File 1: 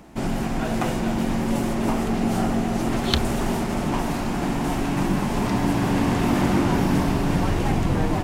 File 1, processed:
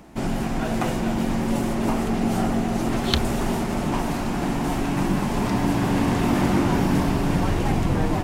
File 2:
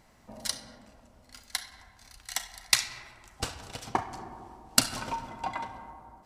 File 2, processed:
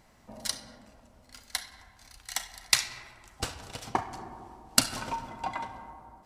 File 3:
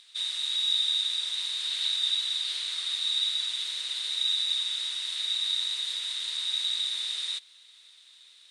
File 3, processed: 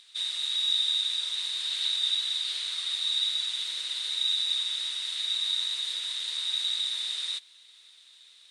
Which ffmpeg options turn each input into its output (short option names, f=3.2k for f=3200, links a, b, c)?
-ar 48000 -c:a aac -b:a 96k